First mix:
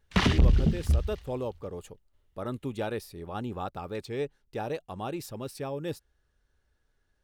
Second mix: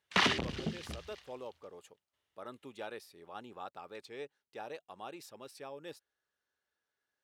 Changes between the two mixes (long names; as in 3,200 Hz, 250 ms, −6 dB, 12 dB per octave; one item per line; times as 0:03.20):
speech −8.0 dB
master: add meter weighting curve A